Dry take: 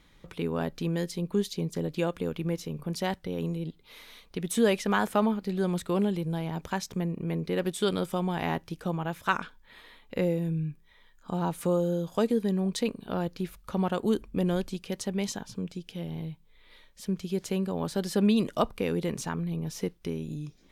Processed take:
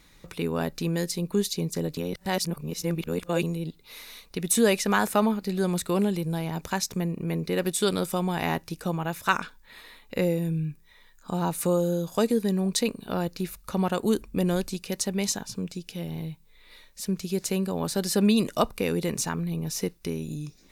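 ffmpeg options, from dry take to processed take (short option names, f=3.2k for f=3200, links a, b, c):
-filter_complex "[0:a]asplit=3[a][b][c];[a]atrim=end=1.972[d];[b]atrim=start=1.968:end=3.432,asetpts=PTS-STARTPTS,areverse[e];[c]atrim=start=3.428[f];[d][e]acrossfade=d=0.004:c1=hsin:c2=hsin[g];[g][f]acrossfade=d=0.004:c1=hsin:c2=hsin,highshelf=f=3.7k:g=10,bandreject=f=3.2k:w=7.7,volume=2dB"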